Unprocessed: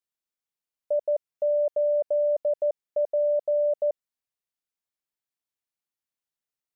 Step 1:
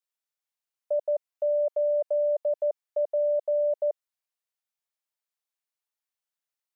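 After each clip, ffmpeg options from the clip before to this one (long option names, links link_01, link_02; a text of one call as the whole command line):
ffmpeg -i in.wav -af "highpass=frequency=520:width=0.5412,highpass=frequency=520:width=1.3066" out.wav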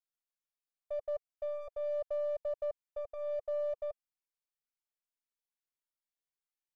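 ffmpeg -i in.wav -filter_complex "[0:a]aeval=exprs='if(lt(val(0),0),0.708*val(0),val(0))':channel_layout=same,flanger=delay=1.3:depth=2:regen=-33:speed=0.42:shape=triangular,asplit=2[link_01][link_02];[link_02]asoftclip=type=tanh:threshold=-37.5dB,volume=-11.5dB[link_03];[link_01][link_03]amix=inputs=2:normalize=0,volume=-6.5dB" out.wav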